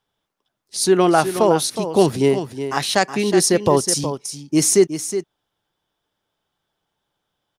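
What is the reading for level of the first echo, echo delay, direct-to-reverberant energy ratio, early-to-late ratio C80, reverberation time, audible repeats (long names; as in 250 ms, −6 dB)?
−10.0 dB, 367 ms, no reverb audible, no reverb audible, no reverb audible, 1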